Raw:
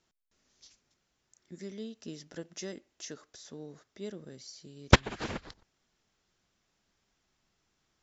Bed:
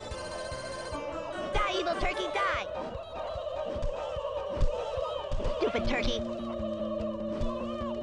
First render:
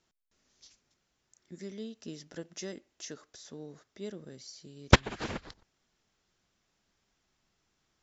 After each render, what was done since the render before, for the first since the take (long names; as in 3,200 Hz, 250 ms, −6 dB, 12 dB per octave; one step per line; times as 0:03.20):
no processing that can be heard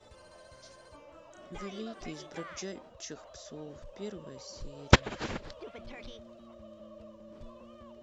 mix in bed −17 dB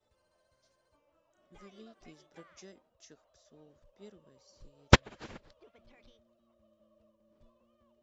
expander for the loud parts 1.5 to 1, over −54 dBFS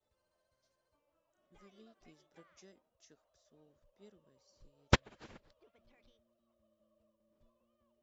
level −7.5 dB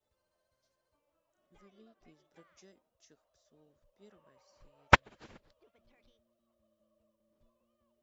0:01.61–0:02.25: high-shelf EQ 3,800 Hz −8.5 dB
0:04.10–0:04.95: flat-topped bell 1,300 Hz +11 dB 2.4 octaves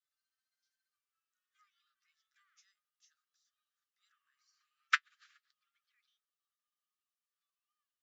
flanger 0.26 Hz, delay 5.8 ms, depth 1.6 ms, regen +52%
Chebyshev high-pass with heavy ripple 1,200 Hz, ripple 3 dB